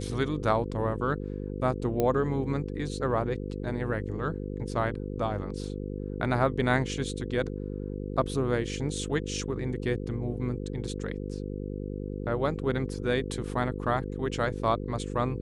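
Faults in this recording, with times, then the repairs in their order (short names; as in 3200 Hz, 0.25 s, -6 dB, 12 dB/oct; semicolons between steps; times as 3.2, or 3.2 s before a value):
buzz 50 Hz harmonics 10 -35 dBFS
2 pop -14 dBFS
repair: de-click; de-hum 50 Hz, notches 10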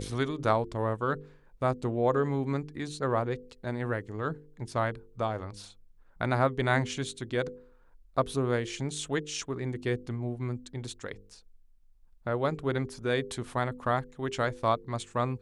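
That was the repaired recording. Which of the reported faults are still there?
none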